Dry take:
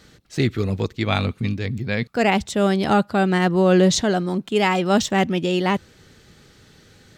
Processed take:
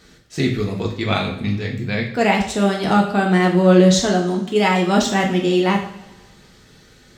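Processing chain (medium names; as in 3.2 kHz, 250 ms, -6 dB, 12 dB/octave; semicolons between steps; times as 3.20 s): two-slope reverb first 0.51 s, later 1.6 s, from -18 dB, DRR -0.5 dB; trim -1 dB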